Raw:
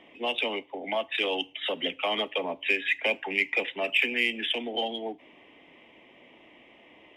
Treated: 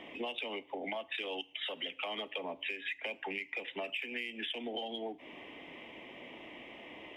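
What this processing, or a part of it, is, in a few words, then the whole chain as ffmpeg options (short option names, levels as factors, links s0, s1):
serial compression, leveller first: -filter_complex "[0:a]asettb=1/sr,asplit=3[s0][s1][s2];[s0]atrim=end=1.414[s3];[s1]atrim=start=1.41:end=2.02,asetpts=PTS-STARTPTS,afade=t=in:d=0.004:c=qsin,afade=t=out:st=0.606:d=0.004:c=qsin,lowshelf=f=500:g=-8.5[s4];[s2]atrim=start=2.016[s5];[s3][s4]acrossfade=d=0.004:c1=hsin:c2=qsin[s6];[s6][s5]acrossfade=d=0.004:c1=qsin:c2=hsin,acompressor=threshold=0.0224:ratio=2,acompressor=threshold=0.00708:ratio=4,volume=1.78"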